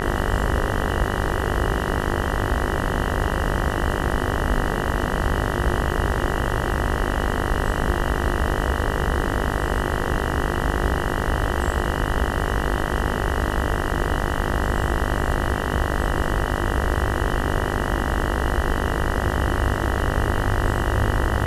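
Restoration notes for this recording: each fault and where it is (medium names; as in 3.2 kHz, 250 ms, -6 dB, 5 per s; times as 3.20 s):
buzz 50 Hz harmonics 39 -26 dBFS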